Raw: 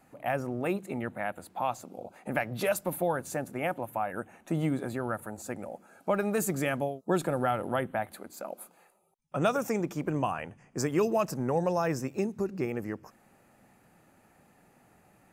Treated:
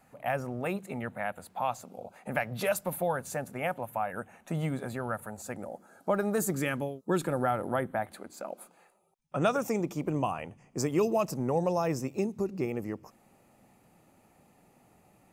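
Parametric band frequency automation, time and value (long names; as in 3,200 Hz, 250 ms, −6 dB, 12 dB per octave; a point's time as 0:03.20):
parametric band −9.5 dB 0.43 octaves
320 Hz
from 0:05.56 2,500 Hz
from 0:06.53 680 Hz
from 0:07.32 2,800 Hz
from 0:08.06 13,000 Hz
from 0:09.63 1,600 Hz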